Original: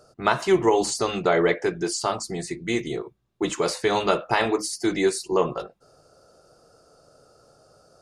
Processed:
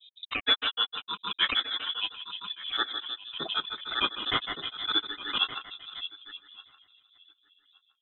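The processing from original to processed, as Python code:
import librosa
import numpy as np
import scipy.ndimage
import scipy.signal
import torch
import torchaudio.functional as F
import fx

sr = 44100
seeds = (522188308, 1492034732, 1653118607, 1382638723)

y = fx.rattle_buzz(x, sr, strikes_db=-31.0, level_db=-19.0)
y = fx.noise_reduce_blind(y, sr, reduce_db=15)
y = fx.env_lowpass(y, sr, base_hz=320.0, full_db=-19.5)
y = fx.peak_eq(y, sr, hz=2700.0, db=8.0, octaves=1.3)
y = fx.echo_split(y, sr, split_hz=1100.0, low_ms=317, high_ms=107, feedback_pct=52, wet_db=-6)
y = fx.granulator(y, sr, seeds[0], grain_ms=100.0, per_s=6.5, spray_ms=100.0, spread_st=0)
y = fx.echo_feedback(y, sr, ms=1169, feedback_pct=20, wet_db=-22)
y = fx.freq_invert(y, sr, carrier_hz=3800)
y = fx.dynamic_eq(y, sr, hz=380.0, q=0.79, threshold_db=-49.0, ratio=4.0, max_db=7)
y = fx.pre_swell(y, sr, db_per_s=81.0)
y = y * 10.0 ** (-4.5 / 20.0)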